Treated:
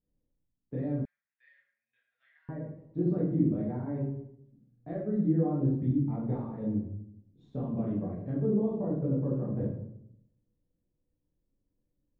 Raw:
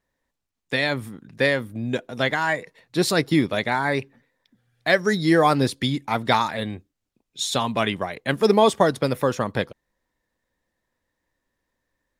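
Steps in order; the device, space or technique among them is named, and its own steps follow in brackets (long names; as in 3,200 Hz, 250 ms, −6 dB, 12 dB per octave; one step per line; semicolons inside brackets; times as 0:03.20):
television next door (downward compressor 3 to 1, threshold −23 dBFS, peak gain reduction 9 dB; low-pass filter 260 Hz 12 dB per octave; convolution reverb RT60 0.75 s, pre-delay 11 ms, DRR −7.5 dB)
0:01.05–0:02.49: elliptic band-pass filter 1,800–5,200 Hz, stop band 70 dB
level −5.5 dB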